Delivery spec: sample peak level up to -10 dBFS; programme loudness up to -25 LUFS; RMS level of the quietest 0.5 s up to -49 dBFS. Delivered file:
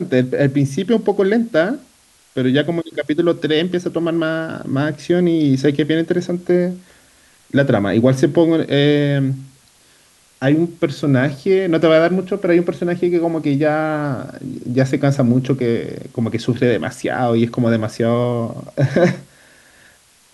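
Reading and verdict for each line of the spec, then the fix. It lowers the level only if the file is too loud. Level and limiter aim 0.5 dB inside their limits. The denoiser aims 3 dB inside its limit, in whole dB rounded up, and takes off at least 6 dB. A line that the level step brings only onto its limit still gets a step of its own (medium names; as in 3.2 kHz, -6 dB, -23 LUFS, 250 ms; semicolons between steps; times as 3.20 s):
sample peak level -2.5 dBFS: fail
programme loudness -17.5 LUFS: fail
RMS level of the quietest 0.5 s -52 dBFS: pass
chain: trim -8 dB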